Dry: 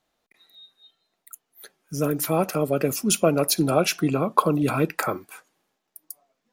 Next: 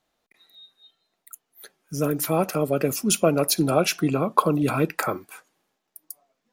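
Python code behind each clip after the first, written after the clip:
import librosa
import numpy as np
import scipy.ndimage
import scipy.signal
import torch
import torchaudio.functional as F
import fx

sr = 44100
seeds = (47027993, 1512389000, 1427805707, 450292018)

y = x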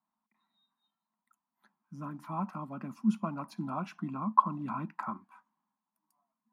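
y = fx.quant_float(x, sr, bits=4)
y = fx.double_bandpass(y, sr, hz=460.0, octaves=2.2)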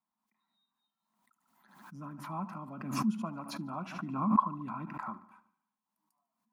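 y = fx.echo_feedback(x, sr, ms=74, feedback_pct=56, wet_db=-17)
y = fx.pre_swell(y, sr, db_per_s=60.0)
y = y * librosa.db_to_amplitude(-4.0)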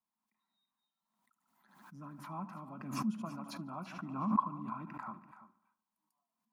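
y = x + 10.0 ** (-14.5 / 20.0) * np.pad(x, (int(336 * sr / 1000.0), 0))[:len(x)]
y = y * librosa.db_to_amplitude(-4.5)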